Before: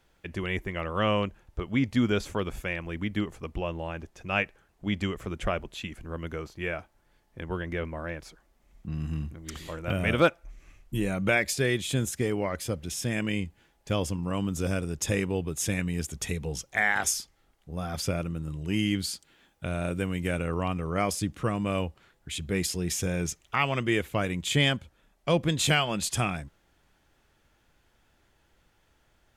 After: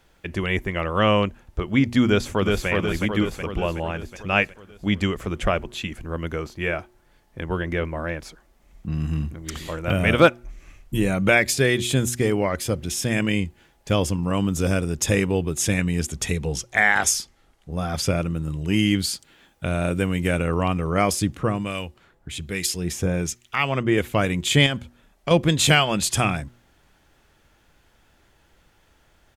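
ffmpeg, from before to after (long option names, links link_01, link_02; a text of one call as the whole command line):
ffmpeg -i in.wav -filter_complex "[0:a]asplit=2[link_01][link_02];[link_02]afade=type=in:start_time=2.05:duration=0.01,afade=type=out:start_time=2.68:duration=0.01,aecho=0:1:370|740|1110|1480|1850|2220|2590|2960|3330:0.749894|0.449937|0.269962|0.161977|0.0971863|0.0583118|0.0349871|0.0209922|0.0125953[link_03];[link_01][link_03]amix=inputs=2:normalize=0,asettb=1/sr,asplit=3[link_04][link_05][link_06];[link_04]atrim=end=15.574[link_07];[link_05]atrim=start=15.57:end=18.31,asetpts=PTS-STARTPTS,afade=type=in:duration=0.004:curve=qsin,afade=type=out:start_time=2.736:duration=0.004:curve=qsin,lowpass=12000[link_08];[link_06]atrim=start=18.306[link_09];[link_07][link_08]acrossfade=duration=0.004:curve1=hsin:curve2=qsin[link_10];[link_10][link_09]acrossfade=duration=0.004:curve1=qsin:curve2=hsin,asettb=1/sr,asplit=3[link_11][link_12][link_13];[link_11]atrim=end=21.374[link_14];[link_12]atrim=start=21.37:end=23.98,asetpts=PTS-STARTPTS,afade=type=in:duration=0.004:curve=qsin,afade=type=out:start_time=2.606:duration=0.004:curve=qsin,acrossover=split=1600[link_15][link_16];[link_15]aeval=exprs='val(0)*(1-0.7/2+0.7/2*cos(2*PI*1.2*n/s))':channel_layout=same[link_17];[link_16]aeval=exprs='val(0)*(1-0.7/2-0.7/2*cos(2*PI*1.2*n/s))':channel_layout=same[link_18];[link_17][link_18]amix=inputs=2:normalize=0[link_19];[link_13]atrim=start=23.976[link_20];[link_14][link_19]acrossfade=duration=0.004:curve1=hsin:curve2=qsin[link_21];[link_21][link_20]acrossfade=duration=0.004:curve1=qsin:curve2=hsin,asettb=1/sr,asplit=3[link_22][link_23][link_24];[link_22]atrim=end=24.664[link_25];[link_23]atrim=start=24.66:end=25.31,asetpts=PTS-STARTPTS,afade=type=in:duration=0.004:curve=qsin,afade=type=out:start_time=0.646:duration=0.004:curve=qsin,acompressor=threshold=-27dB:ratio=6:attack=3.2:release=140:knee=1:detection=peak[link_26];[link_24]atrim=start=25.306[link_27];[link_25][link_26]acrossfade=duration=0.004:curve1=hsin:curve2=qsin[link_28];[link_28][link_27]acrossfade=duration=0.004:curve1=qsin:curve2=hsin,bandreject=frequency=120.4:width_type=h:width=4,bandreject=frequency=240.8:width_type=h:width=4,bandreject=frequency=361.2:width_type=h:width=4,volume=7dB" out.wav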